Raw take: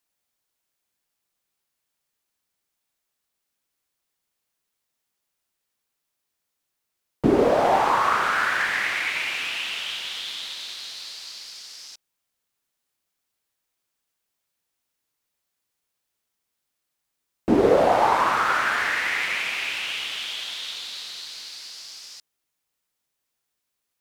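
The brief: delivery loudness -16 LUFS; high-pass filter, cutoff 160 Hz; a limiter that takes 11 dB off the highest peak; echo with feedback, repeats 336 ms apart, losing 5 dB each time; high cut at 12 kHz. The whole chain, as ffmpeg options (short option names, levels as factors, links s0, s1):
-af "highpass=160,lowpass=12000,alimiter=limit=0.133:level=0:latency=1,aecho=1:1:336|672|1008|1344|1680|2016|2352:0.562|0.315|0.176|0.0988|0.0553|0.031|0.0173,volume=3.16"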